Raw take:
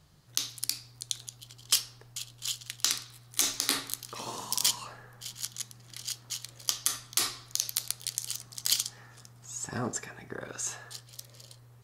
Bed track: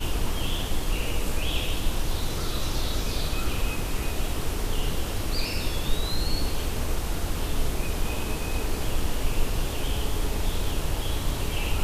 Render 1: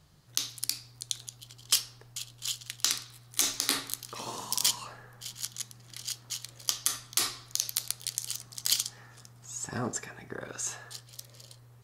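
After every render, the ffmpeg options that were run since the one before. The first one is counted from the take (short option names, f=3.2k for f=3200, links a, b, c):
-af anull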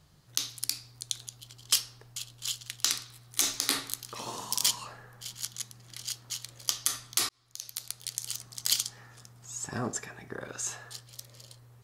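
-filter_complex "[0:a]asplit=2[a][b];[a]atrim=end=7.29,asetpts=PTS-STARTPTS,afade=t=out:st=7.286:d=0.004:c=hsin[c];[b]atrim=start=7.29,asetpts=PTS-STARTPTS,afade=t=in:d=1.06[d];[c][d]concat=n=2:v=0:a=1"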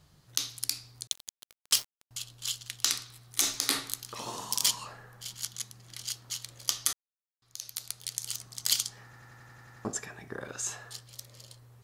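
-filter_complex "[0:a]asettb=1/sr,asplit=3[a][b][c];[a]atrim=end=1.074[d];[b]atrim=start=1.07:end=2.11,asetpts=PTS-STARTPTS,afade=t=in:d=0.004:c=qsin,afade=t=out:st=1.036:d=0.004:c=qsin,aeval=exprs='val(0)*gte(abs(val(0)),0.0158)':c=same[e];[c]atrim=start=2.106[f];[d][e]acrossfade=d=0.004:c1=hsin:c2=qsin[g];[g][f]acrossfade=d=0.004:c1=qsin:c2=hsin,asplit=12[h][i][j][k][l][m][n][o][p][q][r][s];[h]atrim=end=6.93,asetpts=PTS-STARTPTS,afade=t=out:st=6.926:d=0.004:c=hsin[t];[i]atrim=start=6.93:end=7.42,asetpts=PTS-STARTPTS,volume=0[u];[j]atrim=start=7.42:end=9.132,asetpts=PTS-STARTPTS,afade=t=in:d=0.004:c=hsin[v];[k]atrim=start=9.038:end=9.132[w];[l]atrim=start=9.038:end=9.132[x];[m]atrim=start=9.038:end=9.132[y];[n]atrim=start=9.038:end=9.132[z];[o]atrim=start=9.038:end=9.132[aa];[p]atrim=start=9.038:end=9.132[ab];[q]atrim=start=9.038:end=9.132[ac];[r]atrim=start=9.038:end=9.132[ad];[s]atrim=start=9.848[ae];[t][u][v]concat=n=3:v=0:a=1[af];[af][w]acrossfade=d=0.004:c1=hsin:c2=hsin[ag];[ag][x]acrossfade=d=0.004:c1=hsin:c2=hsin[ah];[ah][y]acrossfade=d=0.004:c1=hsin:c2=hsin[ai];[ai][z]acrossfade=d=0.004:c1=hsin:c2=hsin[aj];[aj][aa]acrossfade=d=0.004:c1=hsin:c2=hsin[ak];[ak][ab]acrossfade=d=0.004:c1=hsin:c2=hsin[al];[al][ac]acrossfade=d=0.004:c1=hsin:c2=hsin[am];[am][ad]acrossfade=d=0.004:c1=hsin:c2=hsin[an];[an][ae]acrossfade=d=0.004:c1=hsin:c2=hsin"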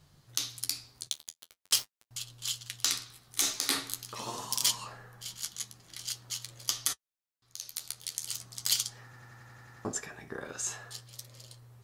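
-filter_complex "[0:a]asplit=2[a][b];[b]asoftclip=type=tanh:threshold=-17.5dB,volume=-6dB[c];[a][c]amix=inputs=2:normalize=0,flanger=delay=7.5:depth=6:regen=-40:speed=0.44:shape=triangular"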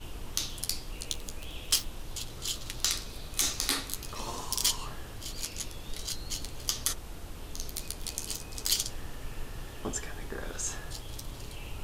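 -filter_complex "[1:a]volume=-14.5dB[a];[0:a][a]amix=inputs=2:normalize=0"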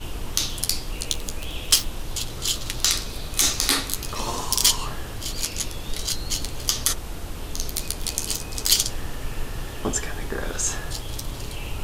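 -af "volume=9.5dB,alimiter=limit=-3dB:level=0:latency=1"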